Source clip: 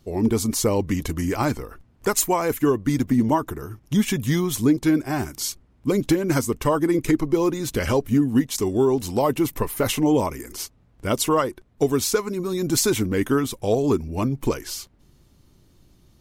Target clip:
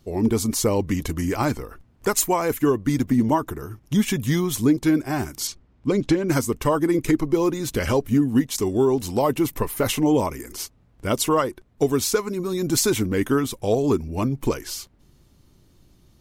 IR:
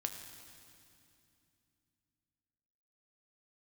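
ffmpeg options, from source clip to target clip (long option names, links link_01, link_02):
-filter_complex "[0:a]asettb=1/sr,asplit=3[link_01][link_02][link_03];[link_01]atrim=end=5.474[link_04];[link_02]atrim=start=5.47:end=6.29,asetpts=PTS-STARTPTS,afade=type=in:duration=0.004:curve=qsin,afade=type=out:start_time=0.816:duration=0.004:curve=qsin,lowpass=6000[link_05];[link_03]atrim=start=6.286[link_06];[link_04][link_05]acrossfade=duration=0.004:curve1=hsin:curve2=qsin[link_07];[link_07][link_06]acrossfade=duration=0.004:curve1=qsin:curve2=hsin"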